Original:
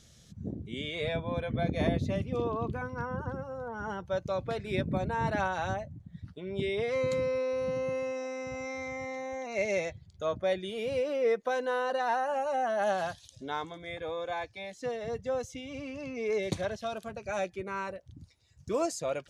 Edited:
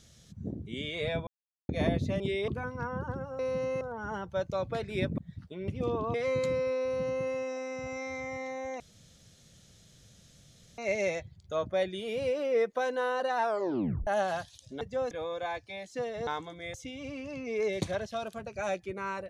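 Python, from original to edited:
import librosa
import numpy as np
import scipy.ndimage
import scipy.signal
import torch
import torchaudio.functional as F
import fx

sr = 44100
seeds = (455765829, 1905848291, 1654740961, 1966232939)

y = fx.edit(x, sr, fx.silence(start_s=1.27, length_s=0.42),
    fx.swap(start_s=2.2, length_s=0.46, other_s=6.54, other_length_s=0.28),
    fx.cut(start_s=4.94, length_s=1.1),
    fx.duplicate(start_s=7.52, length_s=0.42, to_s=3.57),
    fx.insert_room_tone(at_s=9.48, length_s=1.98),
    fx.tape_stop(start_s=12.11, length_s=0.66),
    fx.swap(start_s=13.51, length_s=0.47, other_s=15.14, other_length_s=0.3), tone=tone)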